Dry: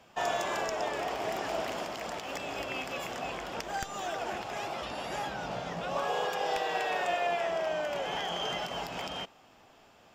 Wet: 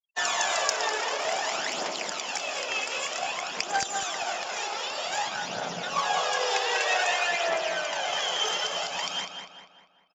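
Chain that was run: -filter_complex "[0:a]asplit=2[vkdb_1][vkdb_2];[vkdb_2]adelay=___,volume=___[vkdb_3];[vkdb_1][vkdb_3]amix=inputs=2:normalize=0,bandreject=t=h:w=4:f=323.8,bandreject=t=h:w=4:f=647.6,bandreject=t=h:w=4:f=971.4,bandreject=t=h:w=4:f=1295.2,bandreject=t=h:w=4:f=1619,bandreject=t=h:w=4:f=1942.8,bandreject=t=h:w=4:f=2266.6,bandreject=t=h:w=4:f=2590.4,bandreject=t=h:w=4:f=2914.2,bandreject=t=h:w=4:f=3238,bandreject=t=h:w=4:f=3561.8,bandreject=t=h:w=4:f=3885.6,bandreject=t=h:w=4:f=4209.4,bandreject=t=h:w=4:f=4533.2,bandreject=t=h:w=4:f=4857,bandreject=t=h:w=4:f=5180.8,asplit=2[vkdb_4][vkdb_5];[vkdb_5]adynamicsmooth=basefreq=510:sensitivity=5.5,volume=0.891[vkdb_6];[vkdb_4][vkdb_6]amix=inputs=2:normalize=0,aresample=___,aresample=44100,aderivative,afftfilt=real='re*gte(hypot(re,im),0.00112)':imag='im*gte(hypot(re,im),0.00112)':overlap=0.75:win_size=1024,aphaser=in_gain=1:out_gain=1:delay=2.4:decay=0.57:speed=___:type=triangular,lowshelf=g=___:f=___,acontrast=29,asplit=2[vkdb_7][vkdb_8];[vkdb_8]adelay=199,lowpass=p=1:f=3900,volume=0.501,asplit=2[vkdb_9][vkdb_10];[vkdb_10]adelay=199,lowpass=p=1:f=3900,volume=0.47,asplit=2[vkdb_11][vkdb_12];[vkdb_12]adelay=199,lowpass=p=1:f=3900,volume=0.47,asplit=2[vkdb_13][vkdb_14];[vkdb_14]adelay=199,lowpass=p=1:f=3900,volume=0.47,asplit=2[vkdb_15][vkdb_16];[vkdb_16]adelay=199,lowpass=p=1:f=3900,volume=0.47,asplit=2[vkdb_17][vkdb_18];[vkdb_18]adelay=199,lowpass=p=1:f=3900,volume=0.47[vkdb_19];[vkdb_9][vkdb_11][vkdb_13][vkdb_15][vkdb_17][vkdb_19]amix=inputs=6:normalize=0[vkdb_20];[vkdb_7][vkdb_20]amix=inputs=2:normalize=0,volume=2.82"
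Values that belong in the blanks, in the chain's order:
28, 0.2, 16000, 0.53, 7, 260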